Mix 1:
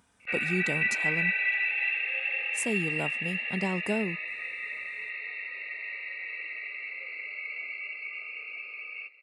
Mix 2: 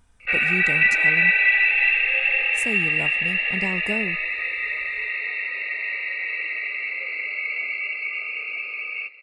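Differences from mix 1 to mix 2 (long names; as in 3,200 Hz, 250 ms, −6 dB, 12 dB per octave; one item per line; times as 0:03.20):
background +10.0 dB
master: remove high-pass filter 150 Hz 12 dB per octave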